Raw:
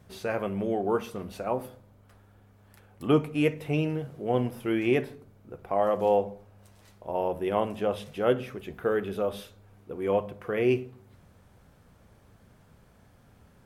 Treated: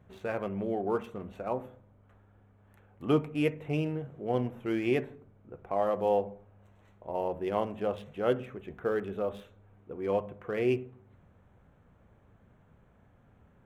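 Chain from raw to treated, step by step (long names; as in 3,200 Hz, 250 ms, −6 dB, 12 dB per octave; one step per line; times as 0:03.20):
adaptive Wiener filter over 9 samples
level −3.5 dB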